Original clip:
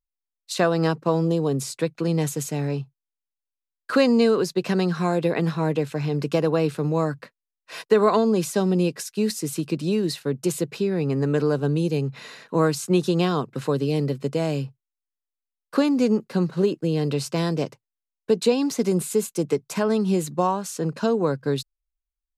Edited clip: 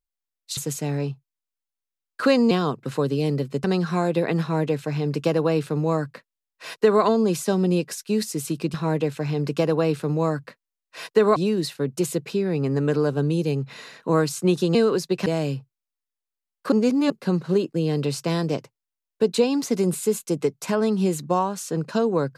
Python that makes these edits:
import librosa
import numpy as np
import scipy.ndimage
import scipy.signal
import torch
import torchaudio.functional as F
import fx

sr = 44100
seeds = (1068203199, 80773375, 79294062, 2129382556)

y = fx.edit(x, sr, fx.cut(start_s=0.57, length_s=1.7),
    fx.swap(start_s=4.21, length_s=0.51, other_s=13.21, other_length_s=1.13),
    fx.duplicate(start_s=5.49, length_s=2.62, to_s=9.82),
    fx.reverse_span(start_s=15.8, length_s=0.38), tone=tone)